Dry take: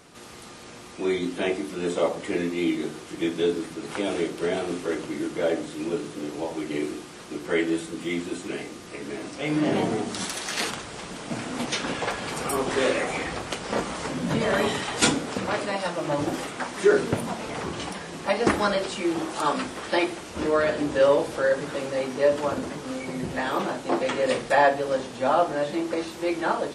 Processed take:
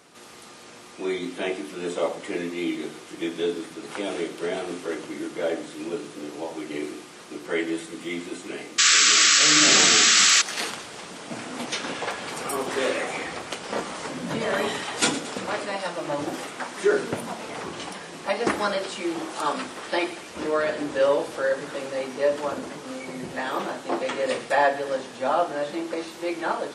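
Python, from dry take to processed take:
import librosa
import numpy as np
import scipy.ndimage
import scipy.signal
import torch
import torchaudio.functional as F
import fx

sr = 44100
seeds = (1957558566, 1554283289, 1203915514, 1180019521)

y = fx.highpass(x, sr, hz=250.0, slope=6)
y = fx.echo_wet_highpass(y, sr, ms=114, feedback_pct=62, hz=1600.0, wet_db=-14)
y = fx.spec_paint(y, sr, seeds[0], shape='noise', start_s=8.78, length_s=1.64, low_hz=1100.0, high_hz=8000.0, level_db=-16.0)
y = F.gain(torch.from_numpy(y), -1.0).numpy()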